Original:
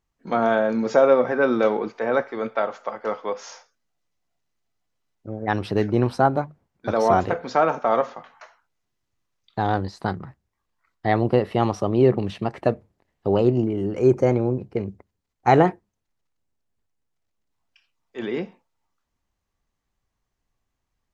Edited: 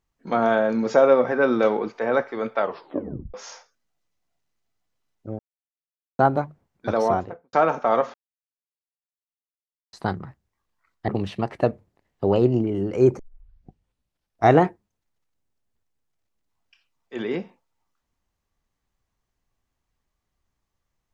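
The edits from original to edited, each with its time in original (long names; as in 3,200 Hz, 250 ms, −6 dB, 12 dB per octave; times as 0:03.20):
0:02.61: tape stop 0.73 s
0:05.39–0:06.19: silence
0:06.87–0:07.53: fade out and dull
0:08.14–0:09.93: silence
0:11.08–0:12.11: remove
0:14.22: tape start 1.39 s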